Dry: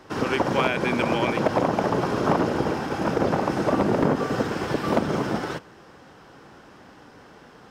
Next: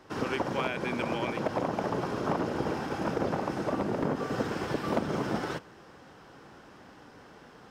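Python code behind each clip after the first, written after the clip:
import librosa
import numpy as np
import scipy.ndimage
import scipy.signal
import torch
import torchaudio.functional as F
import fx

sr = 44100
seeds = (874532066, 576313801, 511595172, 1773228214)

y = fx.rider(x, sr, range_db=10, speed_s=0.5)
y = F.gain(torch.from_numpy(y), -7.5).numpy()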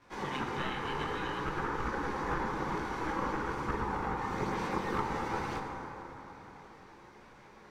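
y = x * np.sin(2.0 * np.pi * 650.0 * np.arange(len(x)) / sr)
y = fx.chorus_voices(y, sr, voices=2, hz=0.54, base_ms=18, depth_ms=4.1, mix_pct=60)
y = fx.rev_plate(y, sr, seeds[0], rt60_s=4.1, hf_ratio=0.45, predelay_ms=0, drr_db=2.5)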